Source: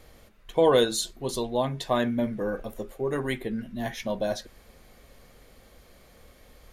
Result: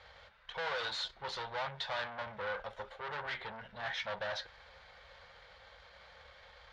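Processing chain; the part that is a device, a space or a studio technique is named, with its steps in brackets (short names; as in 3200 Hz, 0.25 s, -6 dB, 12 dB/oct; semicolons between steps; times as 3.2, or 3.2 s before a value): scooped metal amplifier (tube stage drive 36 dB, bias 0.45; speaker cabinet 89–3900 Hz, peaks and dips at 130 Hz -6 dB, 240 Hz -6 dB, 530 Hz +8 dB, 880 Hz +9 dB, 1500 Hz +6 dB, 2600 Hz -5 dB; passive tone stack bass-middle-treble 10-0-10); gain +9 dB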